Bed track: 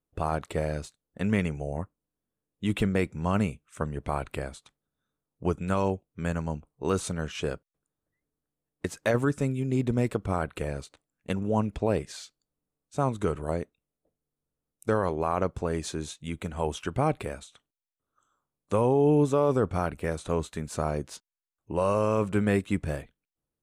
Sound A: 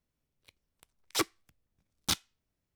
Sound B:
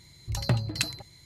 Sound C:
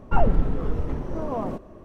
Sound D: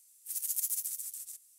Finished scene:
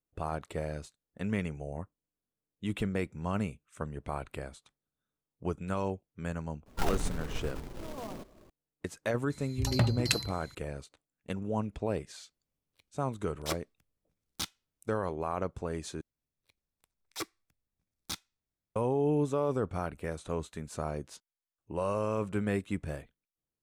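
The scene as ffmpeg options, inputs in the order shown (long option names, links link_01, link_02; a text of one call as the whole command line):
ffmpeg -i bed.wav -i cue0.wav -i cue1.wav -i cue2.wav -filter_complex "[1:a]asplit=2[link_01][link_02];[0:a]volume=-6.5dB[link_03];[3:a]acrusher=bits=2:mode=log:mix=0:aa=0.000001[link_04];[link_02]bandreject=frequency=3000:width=9.8[link_05];[link_03]asplit=2[link_06][link_07];[link_06]atrim=end=16.014[link_08];[link_05]atrim=end=2.75,asetpts=PTS-STARTPTS,volume=-8.5dB[link_09];[link_07]atrim=start=18.756[link_10];[link_04]atrim=end=1.84,asetpts=PTS-STARTPTS,volume=-13.5dB,afade=type=in:duration=0.004:curve=hsin,afade=type=out:start_time=1.836:duration=0.004:curve=hsin,adelay=293706S[link_11];[2:a]atrim=end=1.25,asetpts=PTS-STARTPTS,volume=-0.5dB,afade=type=in:duration=0.004:curve=hsin,afade=type=out:start_time=1.246:duration=0.004:curve=hsin,adelay=410130S[link_12];[link_01]atrim=end=2.75,asetpts=PTS-STARTPTS,volume=-6.5dB,afade=type=in:duration=0.004:curve=hsin,afade=type=out:start_time=2.746:duration=0.004:curve=hsin,adelay=12310[link_13];[link_08][link_09]acrossfade=duration=0.004:curve1=hsin:curve2=hsin[link_14];[link_14][link_10]acrossfade=duration=0.004:curve1=hsin:curve2=hsin[link_15];[link_15][link_11][link_12][link_13]amix=inputs=4:normalize=0" out.wav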